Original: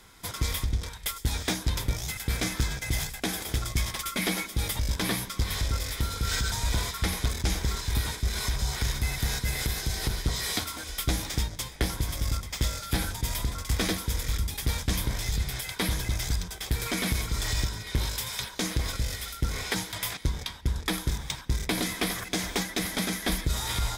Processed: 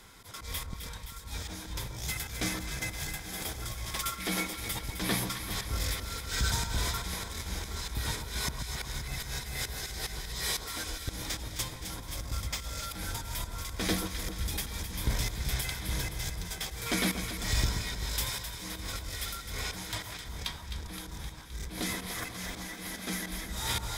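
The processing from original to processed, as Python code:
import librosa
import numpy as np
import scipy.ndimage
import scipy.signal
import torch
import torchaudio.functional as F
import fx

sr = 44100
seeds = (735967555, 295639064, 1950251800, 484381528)

y = fx.auto_swell(x, sr, attack_ms=235.0)
y = fx.echo_alternate(y, sr, ms=130, hz=1300.0, feedback_pct=79, wet_db=-7.0)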